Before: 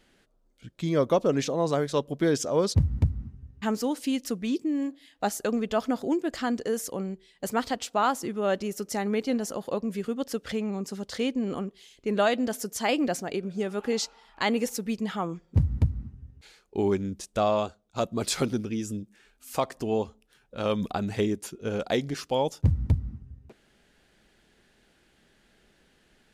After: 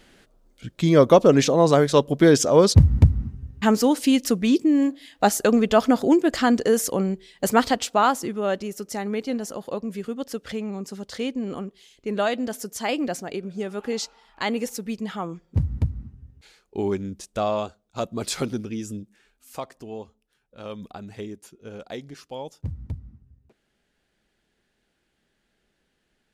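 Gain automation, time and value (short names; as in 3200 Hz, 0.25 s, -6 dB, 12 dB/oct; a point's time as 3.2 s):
7.59 s +9 dB
8.7 s 0 dB
19.01 s 0 dB
19.88 s -9 dB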